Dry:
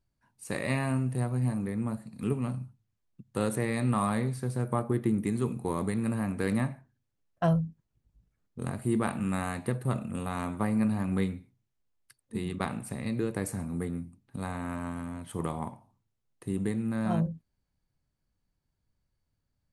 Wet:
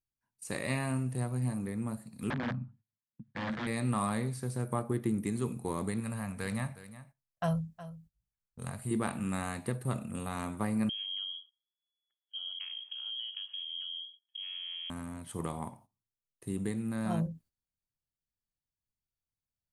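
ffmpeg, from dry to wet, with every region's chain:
ffmpeg -i in.wav -filter_complex "[0:a]asettb=1/sr,asplit=3[link_01][link_02][link_03];[link_01]atrim=end=2.304[link_04];[link_02]atrim=start=2.3:end=3.67,asetpts=PTS-STARTPTS,afade=type=in:duration=0.004:curve=qsin,afade=type=out:start_time=1.366:duration=0.004:curve=qsin,aeval=exprs='(mod(22.4*val(0)+1,2)-1)/22.4':channel_layout=same,highpass=100,equalizer=frequency=100:width_type=q:width=4:gain=6,equalizer=frequency=150:width_type=q:width=4:gain=5,equalizer=frequency=230:width_type=q:width=4:gain=10,equalizer=frequency=400:width_type=q:width=4:gain=-5,equalizer=frequency=1700:width_type=q:width=4:gain=6,equalizer=frequency=2700:width_type=q:width=4:gain=-6,lowpass=frequency=3200:width=0.5412,lowpass=frequency=3200:width=1.3066[link_05];[link_03]atrim=start=3.666[link_06];[link_04][link_05]acrossfade=duration=0.004:curve1=hsin:curve2=qsin[link_07];[link_07][link_06]acrossfade=duration=0.004:curve1=qsin:curve2=hsin,asettb=1/sr,asplit=3[link_08][link_09][link_10];[link_08]atrim=end=6.004[link_11];[link_09]atrim=start=6:end=8.91,asetpts=PTS-STARTPTS,afade=type=in:duration=0.004:curve=qsin,afade=type=out:start_time=2.906:duration=0.004:curve=qsin,equalizer=frequency=320:width=1.8:gain=-12.5,aecho=1:1:365:0.178,atrim=end_sample=128331[link_12];[link_10]atrim=start=8.906[link_13];[link_11][link_12]acrossfade=duration=0.004:curve1=hsin:curve2=qsin[link_14];[link_14][link_13]acrossfade=duration=0.004:curve1=qsin:curve2=hsin,asettb=1/sr,asplit=3[link_15][link_16][link_17];[link_15]atrim=end=10.894[link_18];[link_16]atrim=start=10.89:end=14.9,asetpts=PTS-STARTPTS,afade=type=in:duration=0.004:curve=qsin,afade=type=out:start_time=4.006:duration=0.004:curve=qsin,equalizer=frequency=1700:width=0.32:gain=-14.5,acompressor=threshold=-36dB:ratio=2.5:attack=3.2:release=140:knee=1:detection=peak,lowpass=frequency=2900:width_type=q:width=0.5098,lowpass=frequency=2900:width_type=q:width=0.6013,lowpass=frequency=2900:width_type=q:width=0.9,lowpass=frequency=2900:width_type=q:width=2.563,afreqshift=-3400[link_19];[link_17]atrim=start=14.896[link_20];[link_18][link_19]acrossfade=duration=0.004:curve1=hsin:curve2=qsin[link_21];[link_21][link_20]acrossfade=duration=0.004:curve1=qsin:curve2=hsin,agate=range=-14dB:threshold=-53dB:ratio=16:detection=peak,acrossover=split=8900[link_22][link_23];[link_23]acompressor=threshold=-58dB:ratio=4:attack=1:release=60[link_24];[link_22][link_24]amix=inputs=2:normalize=0,highshelf=frequency=5600:gain=11,volume=-4dB" out.wav

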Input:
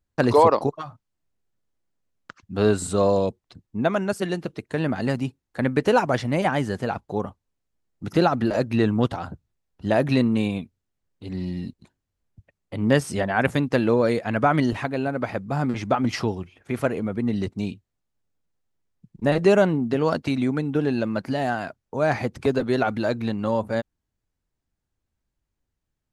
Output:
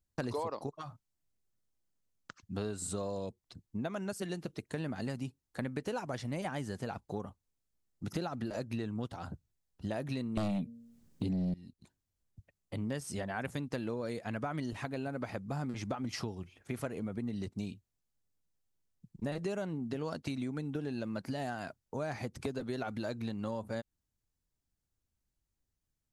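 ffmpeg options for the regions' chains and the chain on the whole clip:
ffmpeg -i in.wav -filter_complex "[0:a]asettb=1/sr,asplit=3[link_01][link_02][link_03];[link_01]atrim=end=10.374[link_04];[link_02]atrim=start=10.37:end=11.54,asetpts=PTS-STARTPTS,afade=type=in:duration=0.004:curve=qsin,afade=type=out:start_time=1.166:duration=0.004:curve=qsin,equalizer=frequency=200:width=0.77:gain=11.5,bandreject=frequency=116.7:width_type=h:width=4,bandreject=frequency=233.4:width_type=h:width=4,bandreject=frequency=350.1:width_type=h:width=4,bandreject=frequency=466.8:width_type=h:width=4,bandreject=frequency=583.5:width_type=h:width=4,aeval=exprs='0.631*sin(PI/2*3.55*val(0)/0.631)':channel_layout=same[link_05];[link_03]atrim=start=11.536[link_06];[link_04][link_05]acrossfade=duration=0.004:curve1=hsin:curve2=qsin[link_07];[link_07][link_06]acrossfade=duration=0.004:curve1=qsin:curve2=hsin,bass=frequency=250:gain=3,treble=frequency=4000:gain=8,acompressor=threshold=-26dB:ratio=6,volume=-8dB" out.wav

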